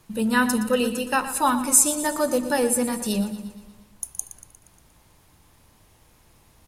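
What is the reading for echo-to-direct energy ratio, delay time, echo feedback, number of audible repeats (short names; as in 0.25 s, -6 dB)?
-11.5 dB, 0.118 s, 57%, 5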